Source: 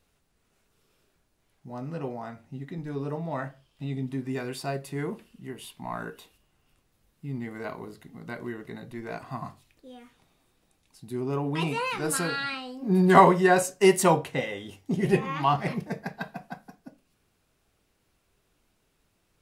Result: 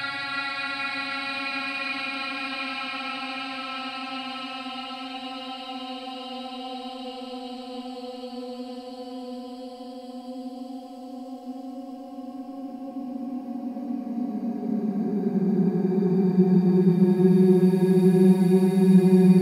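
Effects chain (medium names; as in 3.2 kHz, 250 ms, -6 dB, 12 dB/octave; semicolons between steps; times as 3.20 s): Paulstretch 38×, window 0.10 s, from 12.48 s; echo that smears into a reverb 784 ms, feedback 46%, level -8 dB; whistle 730 Hz -47 dBFS; trim +2 dB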